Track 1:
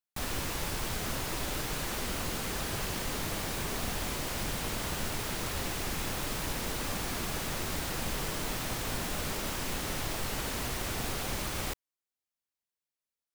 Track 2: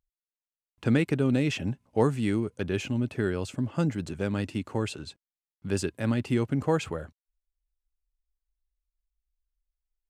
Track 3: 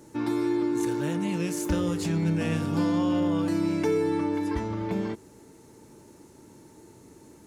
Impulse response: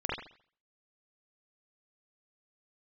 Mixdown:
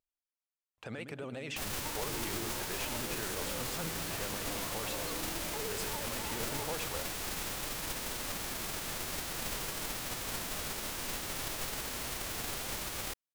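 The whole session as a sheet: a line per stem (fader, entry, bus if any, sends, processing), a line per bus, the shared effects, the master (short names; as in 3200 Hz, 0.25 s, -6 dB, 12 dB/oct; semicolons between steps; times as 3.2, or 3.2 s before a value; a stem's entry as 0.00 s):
-4.5 dB, 1.40 s, no bus, no send, no echo send, spectral whitening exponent 0.6
-5.5 dB, 0.00 s, bus A, no send, echo send -22 dB, dry
-0.5 dB, 1.70 s, bus A, no send, no echo send, compressor, threshold -32 dBFS, peak gain reduction 10.5 dB; tape flanging out of phase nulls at 0.49 Hz, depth 3.4 ms
bus A: 0.0 dB, resonant low shelf 410 Hz -10.5 dB, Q 1.5; limiter -30.5 dBFS, peak gain reduction 11 dB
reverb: off
echo: feedback echo 0.108 s, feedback 51%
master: vibrato 14 Hz 81 cents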